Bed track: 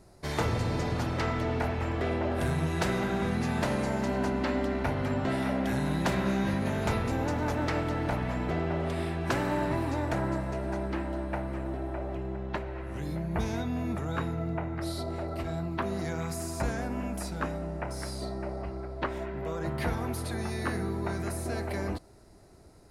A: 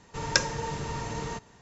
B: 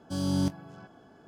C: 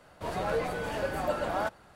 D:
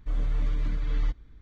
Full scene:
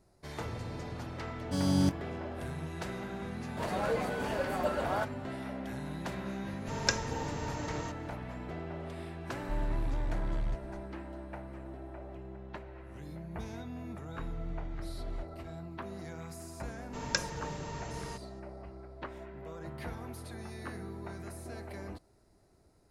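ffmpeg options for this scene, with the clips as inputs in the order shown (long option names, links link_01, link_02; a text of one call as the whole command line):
ffmpeg -i bed.wav -i cue0.wav -i cue1.wav -i cue2.wav -i cue3.wav -filter_complex "[1:a]asplit=2[link_01][link_02];[4:a]asplit=2[link_03][link_04];[0:a]volume=-10.5dB[link_05];[3:a]highpass=43[link_06];[link_03]asoftclip=type=tanh:threshold=-27dB[link_07];[2:a]atrim=end=1.27,asetpts=PTS-STARTPTS,afade=type=in:duration=0.004:curve=hsin,afade=type=out:start_time=1.266:duration=0.004:curve=hsin,adelay=1410[link_08];[link_06]atrim=end=1.95,asetpts=PTS-STARTPTS,volume=-2dB,afade=type=in:duration=0.004:curve=hsin,afade=type=out:start_time=1.946:duration=0.004:curve=hsin,adelay=3360[link_09];[link_01]atrim=end=1.61,asetpts=PTS-STARTPTS,volume=-5.5dB,afade=type=in:duration=0.004:curve=hsin,afade=type=out:start_time=1.606:duration=0.004:curve=hsin,adelay=6530[link_10];[link_07]atrim=end=1.41,asetpts=PTS-STARTPTS,volume=-2dB,afade=type=in:duration=0.004:curve=hsin,afade=type=out:start_time=1.406:duration=0.004:curve=hsin,adelay=9430[link_11];[link_04]atrim=end=1.41,asetpts=PTS-STARTPTS,volume=-14dB,afade=type=in:duration=0.004:curve=hsin,afade=type=out:start_time=1.406:duration=0.004:curve=hsin,adelay=622692S[link_12];[link_02]atrim=end=1.61,asetpts=PTS-STARTPTS,volume=-7.5dB,afade=type=in:duration=0.004:curve=hsin,afade=type=out:start_time=1.606:duration=0.004:curve=hsin,adelay=16790[link_13];[link_05][link_08][link_09][link_10][link_11][link_12][link_13]amix=inputs=7:normalize=0" out.wav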